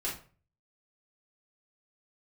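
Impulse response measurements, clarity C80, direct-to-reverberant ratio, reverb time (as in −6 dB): 12.5 dB, −6.0 dB, 0.40 s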